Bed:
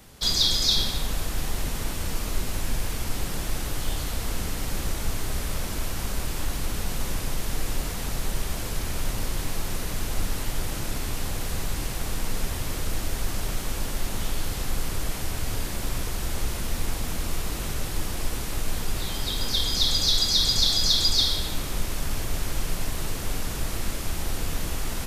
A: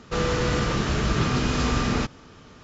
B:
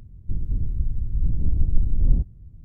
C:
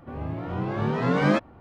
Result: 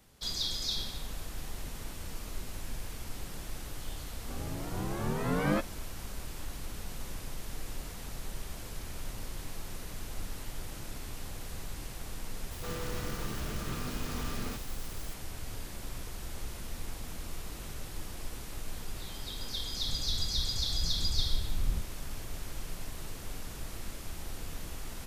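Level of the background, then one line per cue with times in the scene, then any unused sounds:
bed -12 dB
4.22 s: add C -8 dB
12.51 s: add A -15.5 dB + zero-crossing glitches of -24 dBFS
19.58 s: add B -12.5 dB

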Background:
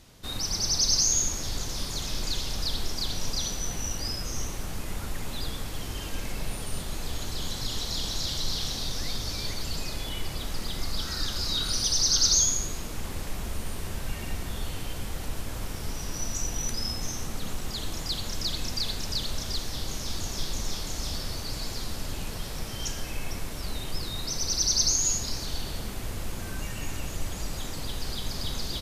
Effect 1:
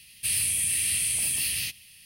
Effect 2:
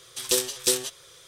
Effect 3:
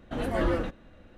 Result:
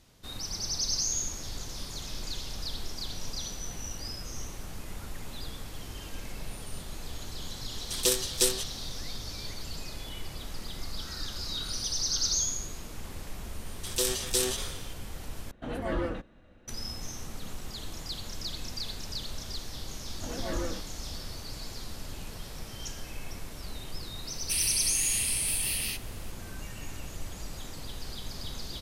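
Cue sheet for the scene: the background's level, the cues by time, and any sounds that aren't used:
background -6.5 dB
7.74 s: add 2 -2.5 dB
13.67 s: add 2 -6 dB + decay stretcher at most 52 dB/s
15.51 s: replace with 3 -4.5 dB
20.11 s: add 3 -8 dB
24.26 s: add 1 -3.5 dB

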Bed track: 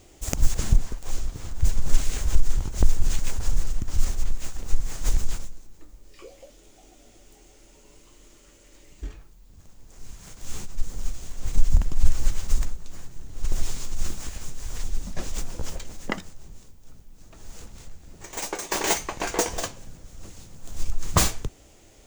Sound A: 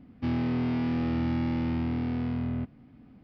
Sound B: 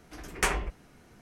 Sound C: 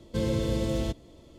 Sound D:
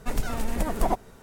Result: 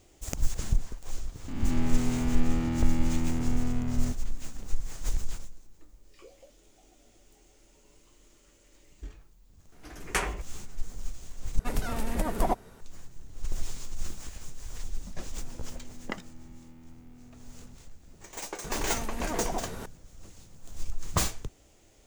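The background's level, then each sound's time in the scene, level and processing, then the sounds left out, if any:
bed track -7 dB
1.48 s: add A -3 dB + reverse spectral sustain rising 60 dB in 1.43 s
9.72 s: add B -2 dB
11.59 s: replace with D -2 dB
15.11 s: add A -16.5 dB + compression 2:1, threshold -38 dBFS
18.64 s: add D -12 dB + level flattener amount 70%
not used: C

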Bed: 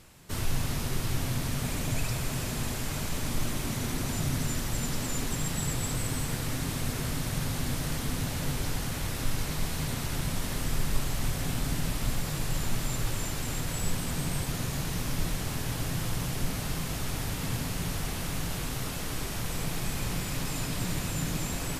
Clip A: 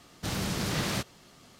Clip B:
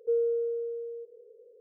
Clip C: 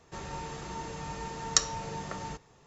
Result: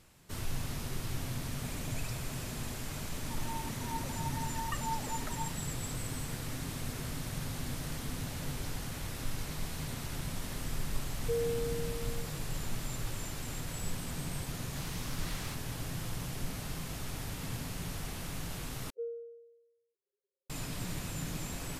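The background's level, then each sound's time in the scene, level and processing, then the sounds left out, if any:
bed -7 dB
3.16 s: add C -6.5 dB + formants replaced by sine waves
11.21 s: add B -6.5 dB
14.52 s: add A -12 dB + high-pass 840 Hz 24 dB/octave
18.90 s: replace with B -11 dB + expander on every frequency bin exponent 3

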